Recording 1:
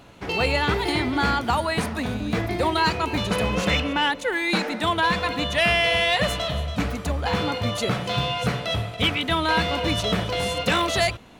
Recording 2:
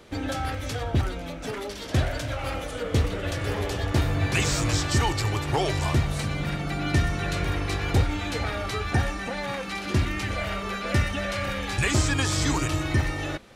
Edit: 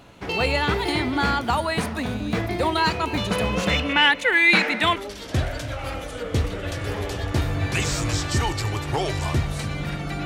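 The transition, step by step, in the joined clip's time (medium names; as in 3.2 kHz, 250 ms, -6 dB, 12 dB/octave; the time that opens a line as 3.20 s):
recording 1
3.89–4.96 s: peaking EQ 2.2 kHz +11 dB 1.1 oct
4.96 s: go over to recording 2 from 1.56 s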